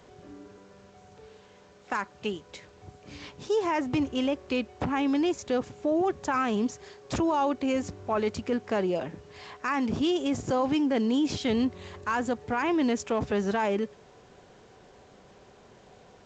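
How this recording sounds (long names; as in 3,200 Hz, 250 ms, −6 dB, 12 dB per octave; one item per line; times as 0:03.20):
a quantiser's noise floor 10 bits, dither none
G.722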